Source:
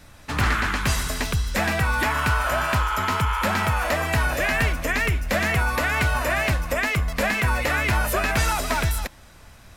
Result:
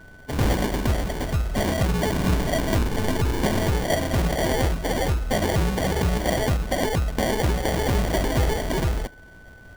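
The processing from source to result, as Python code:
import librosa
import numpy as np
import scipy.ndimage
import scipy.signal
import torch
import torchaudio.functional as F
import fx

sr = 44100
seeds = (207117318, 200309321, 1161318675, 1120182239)

y = fx.sample_hold(x, sr, seeds[0], rate_hz=1300.0, jitter_pct=0)
y = y + 10.0 ** (-48.0 / 20.0) * np.sin(2.0 * np.pi * 1500.0 * np.arange(len(y)) / sr)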